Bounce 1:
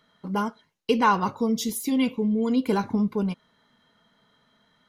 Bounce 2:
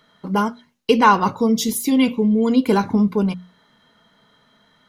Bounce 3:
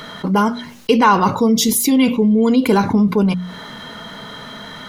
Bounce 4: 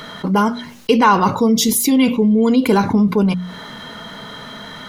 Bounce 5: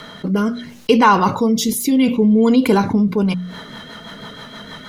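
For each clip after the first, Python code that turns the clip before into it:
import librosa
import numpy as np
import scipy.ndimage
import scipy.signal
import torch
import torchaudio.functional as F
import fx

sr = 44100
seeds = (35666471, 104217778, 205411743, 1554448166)

y1 = fx.hum_notches(x, sr, base_hz=60, count=4)
y1 = y1 * librosa.db_to_amplitude(7.0)
y2 = fx.env_flatten(y1, sr, amount_pct=50)
y3 = y2
y4 = fx.rotary_switch(y3, sr, hz=0.7, then_hz=6.3, switch_at_s=2.91)
y4 = y4 * librosa.db_to_amplitude(1.0)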